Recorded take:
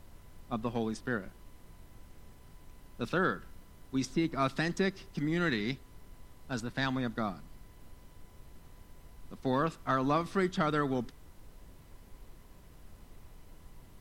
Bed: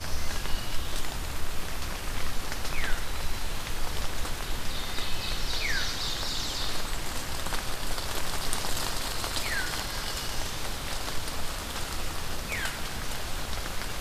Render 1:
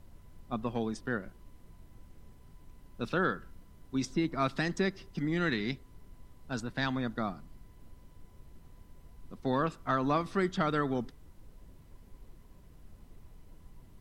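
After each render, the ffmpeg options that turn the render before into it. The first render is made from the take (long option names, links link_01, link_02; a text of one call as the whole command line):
ffmpeg -i in.wav -af "afftdn=noise_reduction=6:noise_floor=-56" out.wav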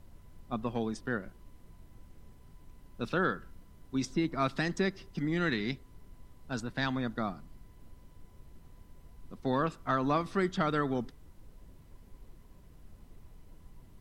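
ffmpeg -i in.wav -af anull out.wav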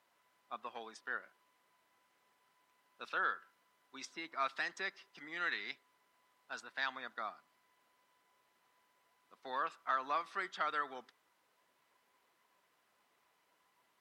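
ffmpeg -i in.wav -af "highpass=1100,highshelf=frequency=4100:gain=-11" out.wav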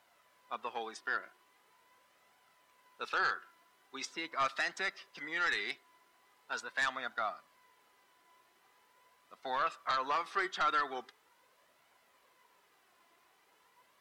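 ffmpeg -i in.wav -af "aeval=exprs='0.0891*sin(PI/2*2.24*val(0)/0.0891)':channel_layout=same,flanger=delay=1.3:depth=1.7:regen=52:speed=0.42:shape=triangular" out.wav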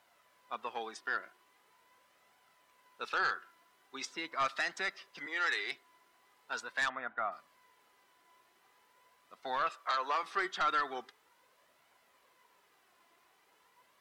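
ffmpeg -i in.wav -filter_complex "[0:a]asettb=1/sr,asplit=3[link_01][link_02][link_03];[link_01]atrim=end=5.264[link_04];[link_02]atrim=start=5.26:end=5.72,asetpts=PTS-STARTPTS,afade=type=in:duration=0.004:curve=qsin,afade=type=out:start_time=0.456:duration=0.004:curve=qsin,highpass=frequency=310:width=0.5412,highpass=frequency=310:width=1.3066[link_05];[link_03]atrim=start=5.716[link_06];[link_04][link_05]acrossfade=duration=0.004:curve1=hsin:curve2=qsin[link_07];[link_07][link_06]acrossfade=duration=0.004:curve1=qsin:curve2=hsin,asplit=3[link_08][link_09][link_10];[link_08]afade=type=out:start_time=6.88:duration=0.02[link_11];[link_09]lowpass=frequency=2300:width=0.5412,lowpass=frequency=2300:width=1.3066,afade=type=in:start_time=6.88:duration=0.02,afade=type=out:start_time=7.31:duration=0.02[link_12];[link_10]afade=type=in:start_time=7.31:duration=0.02[link_13];[link_11][link_12][link_13]amix=inputs=3:normalize=0,asettb=1/sr,asplit=3[link_14][link_15][link_16];[link_14]atrim=end=9.694[link_17];[link_15]atrim=start=9.69:end=10.23,asetpts=PTS-STARTPTS,afade=type=in:duration=0.004:curve=qsin,afade=type=out:start_time=0.536:duration=0.004:curve=qsin,highpass=frequency=310:width=0.5412,highpass=frequency=310:width=1.3066[link_18];[link_16]atrim=start=10.226[link_19];[link_17][link_18]acrossfade=duration=0.004:curve1=hsin:curve2=qsin[link_20];[link_20][link_19]acrossfade=duration=0.004:curve1=qsin:curve2=hsin" out.wav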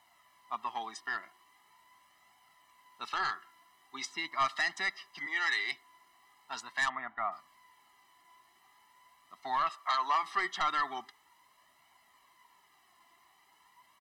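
ffmpeg -i in.wav -af "equalizer=frequency=180:width_type=o:width=2:gain=-2.5,aecho=1:1:1:0.9" out.wav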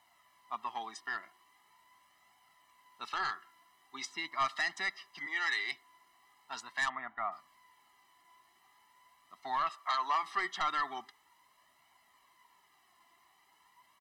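ffmpeg -i in.wav -af "volume=-2dB" out.wav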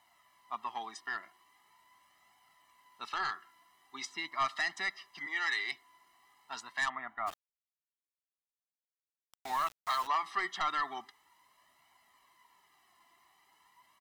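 ffmpeg -i in.wav -filter_complex "[0:a]asplit=3[link_01][link_02][link_03];[link_01]afade=type=out:start_time=7.26:duration=0.02[link_04];[link_02]aeval=exprs='val(0)*gte(abs(val(0)),0.01)':channel_layout=same,afade=type=in:start_time=7.26:duration=0.02,afade=type=out:start_time=10.06:duration=0.02[link_05];[link_03]afade=type=in:start_time=10.06:duration=0.02[link_06];[link_04][link_05][link_06]amix=inputs=3:normalize=0" out.wav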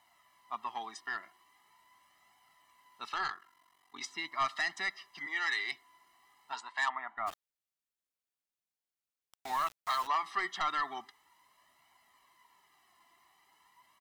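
ffmpeg -i in.wav -filter_complex "[0:a]asplit=3[link_01][link_02][link_03];[link_01]afade=type=out:start_time=3.27:duration=0.02[link_04];[link_02]aeval=exprs='val(0)*sin(2*PI*23*n/s)':channel_layout=same,afade=type=in:start_time=3.27:duration=0.02,afade=type=out:start_time=4:duration=0.02[link_05];[link_03]afade=type=in:start_time=4:duration=0.02[link_06];[link_04][link_05][link_06]amix=inputs=3:normalize=0,asettb=1/sr,asplit=3[link_07][link_08][link_09];[link_07]atrim=end=6.524[link_10];[link_08]atrim=start=6.52:end=7.17,asetpts=PTS-STARTPTS,afade=type=in:duration=0.004:curve=qsin,afade=type=out:start_time=0.646:duration=0.004:curve=qsin,highpass=360,equalizer=frequency=510:width_type=q:width=4:gain=-4,equalizer=frequency=910:width_type=q:width=4:gain=7,equalizer=frequency=5800:width_type=q:width=4:gain=-6,lowpass=frequency=8300:width=0.5412,lowpass=frequency=8300:width=1.3066[link_11];[link_09]atrim=start=7.166[link_12];[link_10][link_11]acrossfade=duration=0.004:curve1=hsin:curve2=qsin[link_13];[link_13][link_12]acrossfade=duration=0.004:curve1=qsin:curve2=hsin" out.wav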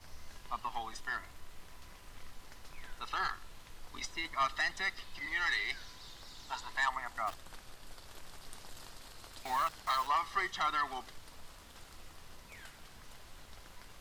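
ffmpeg -i in.wav -i bed.wav -filter_complex "[1:a]volume=-20.5dB[link_01];[0:a][link_01]amix=inputs=2:normalize=0" out.wav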